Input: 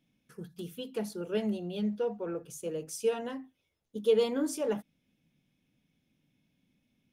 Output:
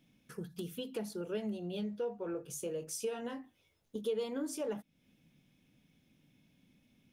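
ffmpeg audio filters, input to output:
-filter_complex "[0:a]asettb=1/sr,asplit=3[a][b][c];[a]atrim=end=1.704[d];[b]atrim=start=1.7:end=4.09,asetpts=PTS-STARTPTS,afade=t=in:d=0.004:c=qsin,afade=t=out:st=2.386:d=0.004:c=qsin,asplit=2[e][f];[f]adelay=21,volume=-9dB[g];[e][g]amix=inputs=2:normalize=0,atrim=end_sample=105399[h];[c]atrim=start=4.086[i];[d][h]acrossfade=d=0.004:c1=hsin:c2=qsin[j];[j][i]acrossfade=d=0.004:c1=qsin:c2=hsin,acompressor=threshold=-46dB:ratio=2.5,volume=5.5dB"

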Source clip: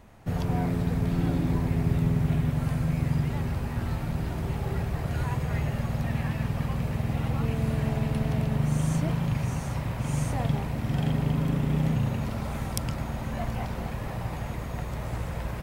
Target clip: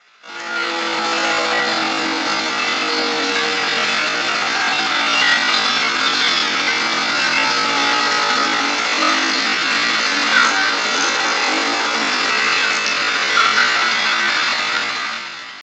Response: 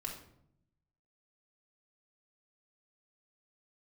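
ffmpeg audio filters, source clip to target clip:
-filter_complex "[0:a]asplit=2[a][b];[b]alimiter=limit=-18.5dB:level=0:latency=1:release=375,volume=-2dB[c];[a][c]amix=inputs=2:normalize=0,highshelf=f=3k:g=-2.5,aresample=8000,asoftclip=type=hard:threshold=-19dB,aresample=44100,highpass=760,adynamicequalizer=threshold=0.00126:dfrequency=2300:dqfactor=6.3:tfrequency=2300:tqfactor=6.3:attack=5:release=100:ratio=0.375:range=2:mode=boostabove:tftype=bell[d];[1:a]atrim=start_sample=2205,afade=t=out:st=0.39:d=0.01,atrim=end_sample=17640[e];[d][e]afir=irnorm=-1:irlink=0,asetrate=85689,aresample=44100,atempo=0.514651,dynaudnorm=f=110:g=13:m=15dB,volume=7dB"

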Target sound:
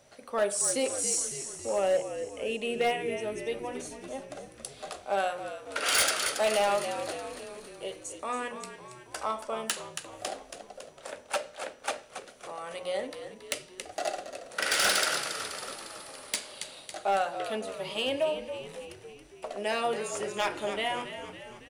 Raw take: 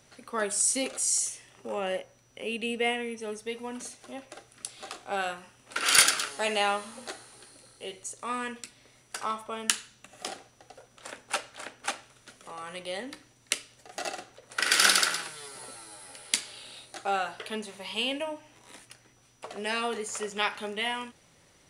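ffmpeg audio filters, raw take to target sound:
-filter_complex "[0:a]equalizer=f=590:t=o:w=0.73:g=11,bandreject=f=60:t=h:w=6,bandreject=f=120:t=h:w=6,bandreject=f=180:t=h:w=6,bandreject=f=240:t=h:w=6,bandreject=f=300:t=h:w=6,bandreject=f=360:t=h:w=6,bandreject=f=420:t=h:w=6,bandreject=f=480:t=h:w=6,bandreject=f=540:t=h:w=6,bandreject=f=600:t=h:w=6,asplit=2[a][b];[b]asplit=7[c][d][e][f][g][h][i];[c]adelay=277,afreqshift=-59,volume=-10.5dB[j];[d]adelay=554,afreqshift=-118,volume=-15.4dB[k];[e]adelay=831,afreqshift=-177,volume=-20.3dB[l];[f]adelay=1108,afreqshift=-236,volume=-25.1dB[m];[g]adelay=1385,afreqshift=-295,volume=-30dB[n];[h]adelay=1662,afreqshift=-354,volume=-34.9dB[o];[i]adelay=1939,afreqshift=-413,volume=-39.8dB[p];[j][k][l][m][n][o][p]amix=inputs=7:normalize=0[q];[a][q]amix=inputs=2:normalize=0,asoftclip=type=hard:threshold=-17.5dB,volume=-2.5dB"

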